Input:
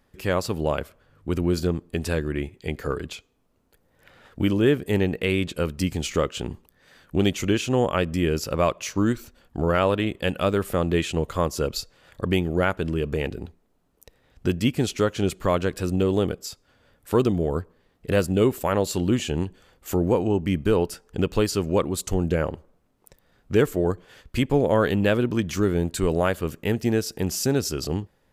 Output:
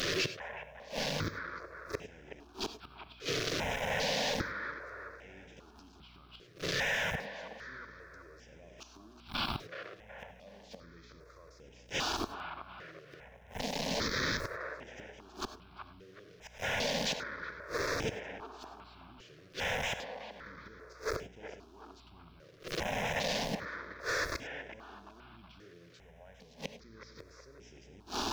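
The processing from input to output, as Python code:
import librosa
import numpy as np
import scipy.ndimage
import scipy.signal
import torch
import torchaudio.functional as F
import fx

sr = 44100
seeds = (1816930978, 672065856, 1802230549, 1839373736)

p1 = fx.delta_mod(x, sr, bps=32000, step_db=-25.5)
p2 = fx.highpass(p1, sr, hz=180.0, slope=6)
p3 = fx.hum_notches(p2, sr, base_hz=60, count=8)
p4 = fx.over_compress(p3, sr, threshold_db=-30.0, ratio=-1.0)
p5 = p3 + F.gain(torch.from_numpy(p4), 1.0).numpy()
p6 = fx.dmg_noise_colour(p5, sr, seeds[0], colour='pink', level_db=-44.0)
p7 = fx.gate_flip(p6, sr, shuts_db=-14.0, range_db=-28)
p8 = fx.add_hum(p7, sr, base_hz=60, snr_db=23)
p9 = p8 + fx.echo_wet_bandpass(p8, sr, ms=373, feedback_pct=43, hz=980.0, wet_db=-6, dry=0)
p10 = fx.rev_gated(p9, sr, seeds[1], gate_ms=120, shape='rising', drr_db=11.0)
p11 = fx.phaser_held(p10, sr, hz=2.5, low_hz=230.0, high_hz=4300.0)
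y = F.gain(torch.from_numpy(p11), -5.5).numpy()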